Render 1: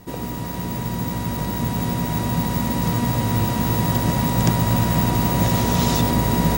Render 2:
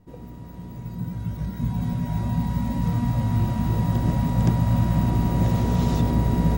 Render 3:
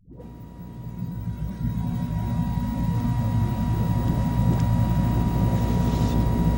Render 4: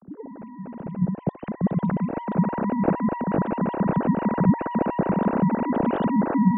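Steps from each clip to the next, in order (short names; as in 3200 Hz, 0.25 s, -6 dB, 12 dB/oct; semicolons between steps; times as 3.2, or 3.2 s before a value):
spectral noise reduction 9 dB; tilt -2.5 dB/oct; gain -8 dB
dispersion highs, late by 0.129 s, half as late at 520 Hz; gain -1 dB
sine-wave speech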